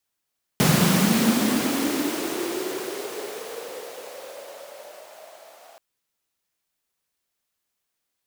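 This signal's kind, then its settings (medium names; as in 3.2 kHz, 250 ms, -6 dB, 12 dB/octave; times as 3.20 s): swept filtered noise pink, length 5.18 s highpass, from 150 Hz, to 680 Hz, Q 7.2, linear, gain ramp -32 dB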